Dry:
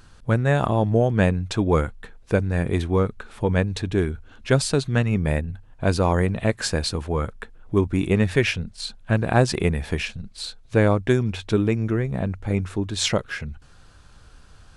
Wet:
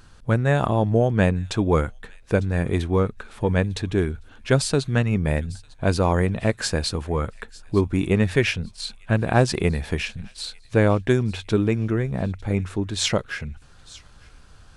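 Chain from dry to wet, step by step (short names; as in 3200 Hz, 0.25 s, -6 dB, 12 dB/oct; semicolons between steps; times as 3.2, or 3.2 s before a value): thin delay 0.901 s, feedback 36%, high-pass 2600 Hz, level -19 dB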